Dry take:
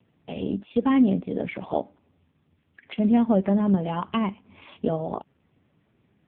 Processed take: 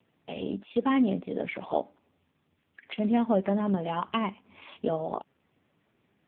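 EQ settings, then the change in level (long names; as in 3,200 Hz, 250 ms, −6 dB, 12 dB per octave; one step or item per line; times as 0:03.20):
low-shelf EQ 250 Hz −11 dB
0.0 dB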